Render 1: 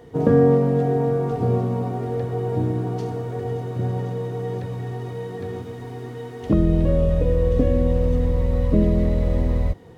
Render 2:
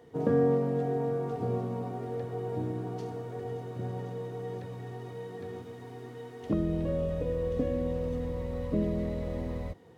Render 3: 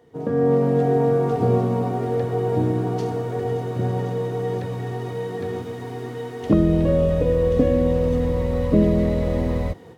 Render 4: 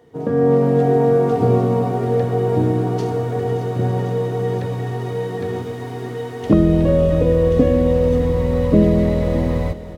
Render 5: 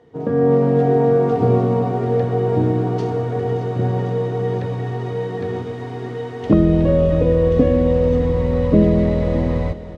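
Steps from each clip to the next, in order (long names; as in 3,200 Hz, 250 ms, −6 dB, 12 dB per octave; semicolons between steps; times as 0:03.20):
high-pass filter 150 Hz 6 dB per octave; level −8.5 dB
automatic gain control gain up to 12.5 dB
single-tap delay 621 ms −15 dB; level +3.5 dB
high-frequency loss of the air 86 metres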